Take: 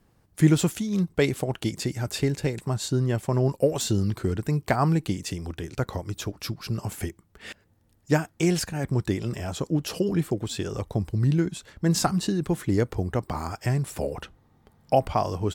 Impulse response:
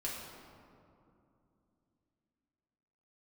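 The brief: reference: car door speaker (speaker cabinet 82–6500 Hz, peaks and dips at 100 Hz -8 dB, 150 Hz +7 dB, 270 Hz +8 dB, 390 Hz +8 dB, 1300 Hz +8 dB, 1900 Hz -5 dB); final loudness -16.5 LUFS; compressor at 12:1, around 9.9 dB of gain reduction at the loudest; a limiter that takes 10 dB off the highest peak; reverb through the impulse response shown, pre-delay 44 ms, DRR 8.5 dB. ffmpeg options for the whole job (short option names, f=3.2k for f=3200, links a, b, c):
-filter_complex "[0:a]acompressor=threshold=-23dB:ratio=12,alimiter=limit=-22dB:level=0:latency=1,asplit=2[a][b];[1:a]atrim=start_sample=2205,adelay=44[c];[b][c]afir=irnorm=-1:irlink=0,volume=-10.5dB[d];[a][d]amix=inputs=2:normalize=0,highpass=82,equalizer=f=100:t=q:w=4:g=-8,equalizer=f=150:t=q:w=4:g=7,equalizer=f=270:t=q:w=4:g=8,equalizer=f=390:t=q:w=4:g=8,equalizer=f=1.3k:t=q:w=4:g=8,equalizer=f=1.9k:t=q:w=4:g=-5,lowpass=f=6.5k:w=0.5412,lowpass=f=6.5k:w=1.3066,volume=12dB"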